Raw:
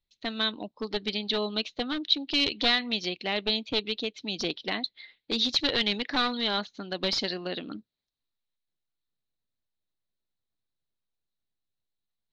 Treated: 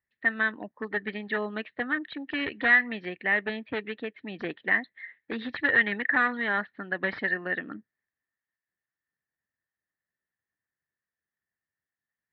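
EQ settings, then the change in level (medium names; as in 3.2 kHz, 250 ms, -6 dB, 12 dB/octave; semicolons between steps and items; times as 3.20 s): high-pass 75 Hz; resonant low-pass 1.8 kHz, resonance Q 14; distance through air 280 m; -1.5 dB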